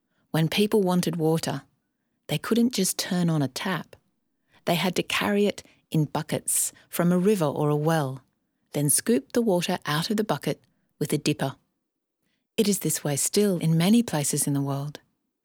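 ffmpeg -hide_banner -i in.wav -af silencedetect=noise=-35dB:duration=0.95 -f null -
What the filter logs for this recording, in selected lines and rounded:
silence_start: 11.51
silence_end: 12.58 | silence_duration: 1.07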